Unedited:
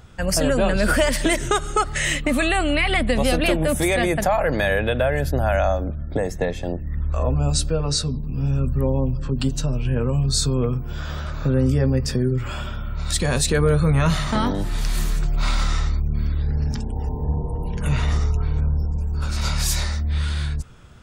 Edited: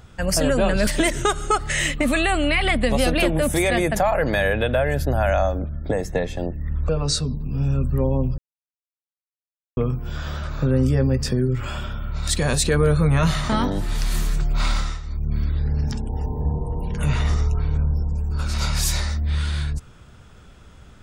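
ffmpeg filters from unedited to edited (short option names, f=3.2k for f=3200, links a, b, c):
-filter_complex "[0:a]asplit=7[a][b][c][d][e][f][g];[a]atrim=end=0.872[h];[b]atrim=start=1.128:end=7.152[i];[c]atrim=start=7.718:end=9.21,asetpts=PTS-STARTPTS,afade=t=out:st=1.488:d=0.004:c=hsin[j];[d]atrim=start=9.21:end=10.6,asetpts=PTS-STARTPTS,volume=0[k];[e]atrim=start=10.6:end=15.84,asetpts=PTS-STARTPTS,afade=t=in:d=0.004:c=hsin,afade=t=out:st=4.95:d=0.29:silence=0.237137[l];[f]atrim=start=15.84:end=15.86,asetpts=PTS-STARTPTS,volume=-12.5dB[m];[g]atrim=start=15.86,asetpts=PTS-STARTPTS,afade=t=in:d=0.29:silence=0.237137[n];[h][i]acrossfade=d=0.004:c1=hsin:c2=hsin[o];[j][k][l][m][n]concat=n=5:v=0:a=1[p];[o][p]acrossfade=d=0.004:c1=hsin:c2=hsin"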